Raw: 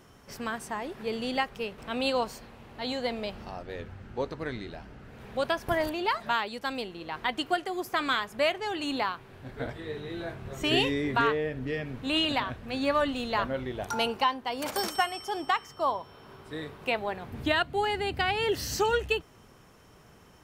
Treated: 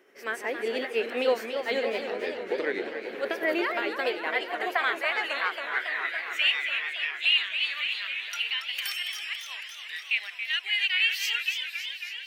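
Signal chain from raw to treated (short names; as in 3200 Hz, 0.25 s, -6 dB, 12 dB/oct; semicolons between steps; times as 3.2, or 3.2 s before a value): ten-band EQ 125 Hz -10 dB, 1000 Hz -8 dB, 2000 Hz +11 dB, 4000 Hz -4 dB, 8000 Hz -6 dB; AGC gain up to 10.5 dB; limiter -11.5 dBFS, peak gain reduction 9.5 dB; granular stretch 0.6×, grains 0.199 s; high-pass sweep 390 Hz -> 2800 Hz, 3.88–6.6; warbling echo 0.276 s, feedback 74%, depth 167 cents, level -8 dB; gain -6 dB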